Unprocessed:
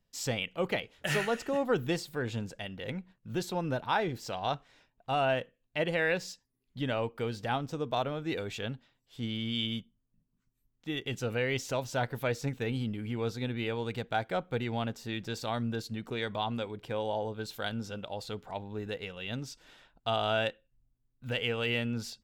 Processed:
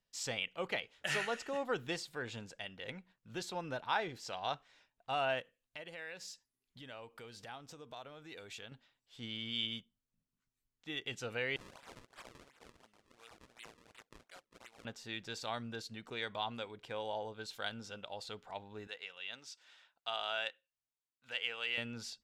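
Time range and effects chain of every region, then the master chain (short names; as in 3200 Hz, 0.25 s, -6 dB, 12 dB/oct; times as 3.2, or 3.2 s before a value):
5.4–8.72 high shelf 9200 Hz +11.5 dB + compressor 3:1, threshold -42 dBFS
11.56–14.85 differentiator + decimation with a swept rate 34×, swing 160% 2.8 Hz
18.87–21.78 HPF 1100 Hz 6 dB/oct + high shelf 7800 Hz -4 dB
whole clip: LPF 9300 Hz 12 dB/oct; low shelf 480 Hz -11.5 dB; gain -2.5 dB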